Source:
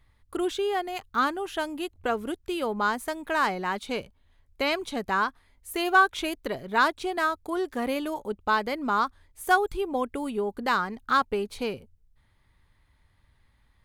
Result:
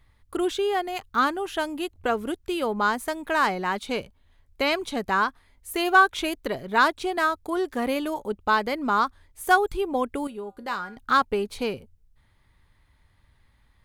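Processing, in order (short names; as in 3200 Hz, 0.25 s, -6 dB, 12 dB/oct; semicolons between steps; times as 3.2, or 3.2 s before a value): 10.27–10.97 resonator 110 Hz, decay 0.32 s, harmonics odd, mix 70%; gain +2.5 dB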